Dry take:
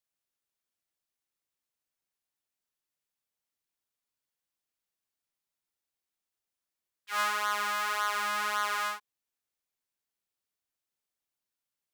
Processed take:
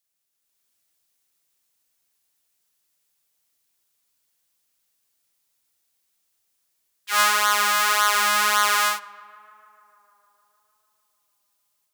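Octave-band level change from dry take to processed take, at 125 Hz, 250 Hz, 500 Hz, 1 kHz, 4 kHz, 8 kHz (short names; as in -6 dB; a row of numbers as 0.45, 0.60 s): n/a, +9.0 dB, +9.0 dB, +10.0 dB, +13.5 dB, +16.5 dB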